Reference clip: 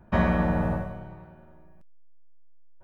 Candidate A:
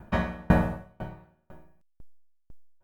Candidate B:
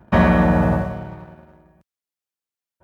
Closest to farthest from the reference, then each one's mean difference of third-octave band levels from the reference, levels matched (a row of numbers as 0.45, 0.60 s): B, A; 1.5, 6.0 dB